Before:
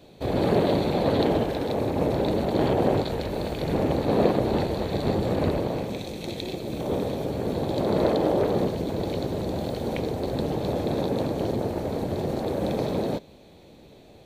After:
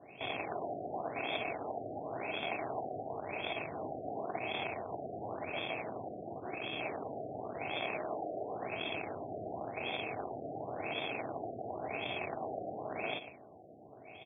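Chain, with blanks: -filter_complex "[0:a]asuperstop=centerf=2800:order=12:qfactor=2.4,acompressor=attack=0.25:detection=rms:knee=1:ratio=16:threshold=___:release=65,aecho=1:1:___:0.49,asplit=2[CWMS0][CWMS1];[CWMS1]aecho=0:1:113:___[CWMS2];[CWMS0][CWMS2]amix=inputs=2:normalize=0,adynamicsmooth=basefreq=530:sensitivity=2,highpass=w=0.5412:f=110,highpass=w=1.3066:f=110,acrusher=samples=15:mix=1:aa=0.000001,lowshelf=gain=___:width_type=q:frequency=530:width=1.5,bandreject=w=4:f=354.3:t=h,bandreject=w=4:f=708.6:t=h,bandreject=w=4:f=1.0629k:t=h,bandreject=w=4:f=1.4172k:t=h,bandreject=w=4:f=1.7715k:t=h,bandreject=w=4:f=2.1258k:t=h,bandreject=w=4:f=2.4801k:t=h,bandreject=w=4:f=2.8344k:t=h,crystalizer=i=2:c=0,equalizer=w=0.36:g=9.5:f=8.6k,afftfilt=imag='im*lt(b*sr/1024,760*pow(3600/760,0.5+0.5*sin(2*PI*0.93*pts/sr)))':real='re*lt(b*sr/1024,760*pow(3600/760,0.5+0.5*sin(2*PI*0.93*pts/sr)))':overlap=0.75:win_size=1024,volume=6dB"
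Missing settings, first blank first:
-33dB, 2.8, 0.335, -10.5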